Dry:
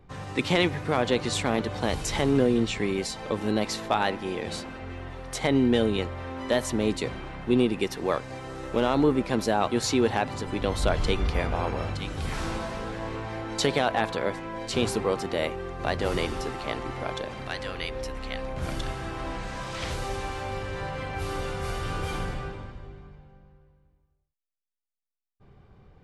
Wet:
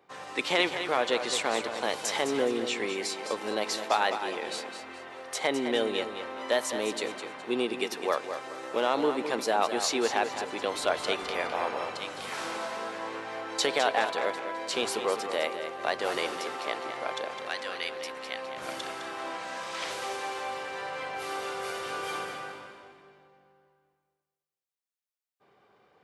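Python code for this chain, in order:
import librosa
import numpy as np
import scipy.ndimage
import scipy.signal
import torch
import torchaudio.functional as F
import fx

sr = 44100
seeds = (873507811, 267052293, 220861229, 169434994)

y = scipy.signal.sosfilt(scipy.signal.butter(2, 470.0, 'highpass', fs=sr, output='sos'), x)
y = fx.echo_feedback(y, sr, ms=209, feedback_pct=32, wet_db=-9.0)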